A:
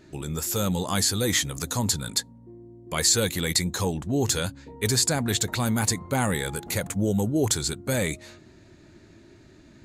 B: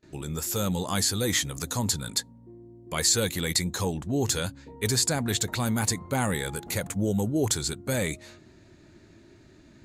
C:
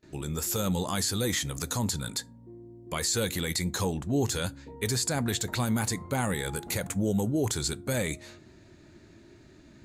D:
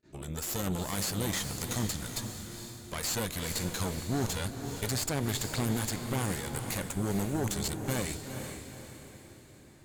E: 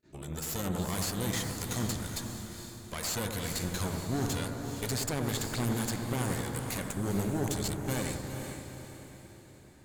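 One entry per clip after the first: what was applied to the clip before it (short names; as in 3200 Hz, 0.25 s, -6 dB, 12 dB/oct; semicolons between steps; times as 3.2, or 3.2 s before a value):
gate with hold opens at -45 dBFS; gain -2 dB
limiter -18.5 dBFS, peak gain reduction 8 dB; reverb RT60 0.35 s, pre-delay 7 ms, DRR 19.5 dB
added harmonics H 4 -10 dB, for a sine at -17.5 dBFS; diffused feedback echo 0.456 s, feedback 46%, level -7 dB; attack slew limiter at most 490 dB/s; gain -5.5 dB
analogue delay 92 ms, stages 1024, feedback 69%, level -5.5 dB; gain -1.5 dB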